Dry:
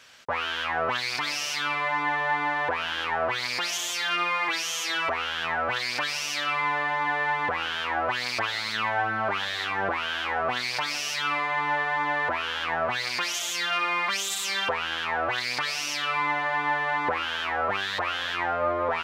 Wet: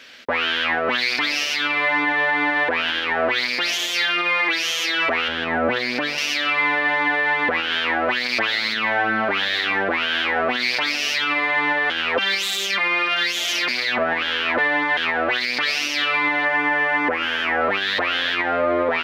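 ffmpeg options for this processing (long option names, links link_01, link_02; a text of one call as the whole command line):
ffmpeg -i in.wav -filter_complex "[0:a]asettb=1/sr,asplit=3[link_01][link_02][link_03];[link_01]atrim=end=5.284[link_04];[link_02]atrim=start=5.28:end=6.18,asetpts=PTS-STARTPTS,afade=type=in:duration=0.004:curve=qsin,afade=type=out:start_time=0.896:duration=0.004:curve=qsin,tiltshelf=frequency=970:gain=7[link_05];[link_03]atrim=start=6.176[link_06];[link_04][link_05]acrossfade=duration=0.004:curve1=hsin:curve2=qsin[link_07];[link_07][link_06]acrossfade=duration=0.004:curve1=qsin:curve2=hsin,asettb=1/sr,asplit=3[link_08][link_09][link_10];[link_08]atrim=end=16.454[link_11];[link_09]atrim=start=16.45:end=17.61,asetpts=PTS-STARTPTS,afade=type=in:duration=0.004:curve=qsin,afade=type=out:start_time=1.156:duration=0.004:curve=qsin,equalizer=frequency=3900:width_type=o:width=0.45:gain=-10[link_12];[link_10]atrim=start=17.606[link_13];[link_11][link_12]acrossfade=duration=0.004:curve1=hsin:curve2=qsin[link_14];[link_14][link_13]acrossfade=duration=0.004:curve1=qsin:curve2=hsin,asplit=3[link_15][link_16][link_17];[link_15]atrim=end=11.902[link_18];[link_16]atrim=start=11.898:end=14.972,asetpts=PTS-STARTPTS,areverse[link_19];[link_17]atrim=start=14.968[link_20];[link_18][link_19]acrossfade=duration=0.004:curve1=hsin:curve2=hsin[link_21];[link_21][link_20]acrossfade=duration=0.004:curve1=hsin:curve2=hsin,equalizer=frequency=125:width_type=o:width=1:gain=-9,equalizer=frequency=250:width_type=o:width=1:gain=10,equalizer=frequency=500:width_type=o:width=1:gain=4,equalizer=frequency=1000:width_type=o:width=1:gain=-5,equalizer=frequency=2000:width_type=o:width=1:gain=6,equalizer=frequency=4000:width_type=o:width=1:gain=5,equalizer=frequency=8000:width_type=o:width=1:gain=-8,alimiter=limit=-16dB:level=0:latency=1:release=66,volume=5dB" out.wav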